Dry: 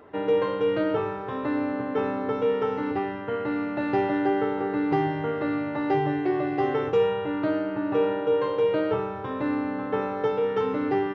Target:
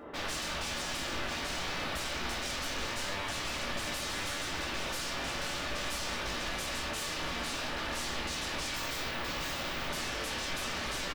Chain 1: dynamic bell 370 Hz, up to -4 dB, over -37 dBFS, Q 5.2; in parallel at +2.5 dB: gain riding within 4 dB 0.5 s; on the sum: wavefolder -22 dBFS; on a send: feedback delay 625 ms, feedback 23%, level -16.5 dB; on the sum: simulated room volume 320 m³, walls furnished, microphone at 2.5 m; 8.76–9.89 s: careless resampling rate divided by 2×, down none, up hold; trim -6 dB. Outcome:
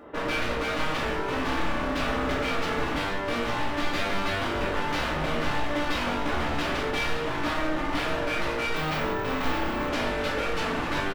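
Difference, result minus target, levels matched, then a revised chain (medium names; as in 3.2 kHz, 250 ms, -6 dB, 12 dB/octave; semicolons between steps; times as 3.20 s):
wavefolder: distortion -31 dB
dynamic bell 370 Hz, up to -4 dB, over -37 dBFS, Q 5.2; in parallel at +2.5 dB: gain riding within 4 dB 0.5 s; on the sum: wavefolder -30 dBFS; on a send: feedback delay 625 ms, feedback 23%, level -16.5 dB; on the sum: simulated room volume 320 m³, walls furnished, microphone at 2.5 m; 8.76–9.89 s: careless resampling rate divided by 2×, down none, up hold; trim -6 dB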